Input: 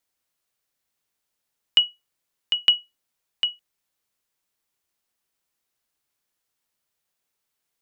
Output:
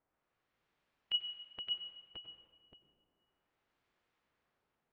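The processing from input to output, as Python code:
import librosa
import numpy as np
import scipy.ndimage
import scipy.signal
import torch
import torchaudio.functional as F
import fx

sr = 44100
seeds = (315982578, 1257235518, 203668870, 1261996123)

y = fx.high_shelf(x, sr, hz=2300.0, db=-3.5)
y = fx.over_compress(y, sr, threshold_db=-27.0, ratio=-1.0)
y = fx.stretch_vocoder(y, sr, factor=0.63)
y = fx.filter_lfo_lowpass(y, sr, shape='sine', hz=0.32, low_hz=420.0, high_hz=2800.0, q=0.79)
y = y + 10.0 ** (-5.0 / 20.0) * np.pad(y, (int(568 * sr / 1000.0), 0))[:len(y)]
y = fx.rev_plate(y, sr, seeds[0], rt60_s=1.8, hf_ratio=0.85, predelay_ms=80, drr_db=7.5)
y = y * librosa.db_to_amplitude(1.5)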